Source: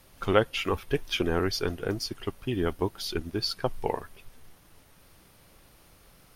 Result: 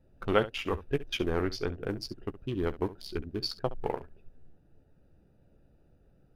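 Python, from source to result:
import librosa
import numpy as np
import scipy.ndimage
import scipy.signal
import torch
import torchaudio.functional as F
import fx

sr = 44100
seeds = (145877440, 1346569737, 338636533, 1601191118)

y = fx.wiener(x, sr, points=41)
y = fx.high_shelf(y, sr, hz=7500.0, db=-9.5, at=(1.41, 1.81))
y = fx.room_early_taps(y, sr, ms=(14, 68), db=(-11.0, -16.0))
y = F.gain(torch.from_numpy(y), -3.0).numpy()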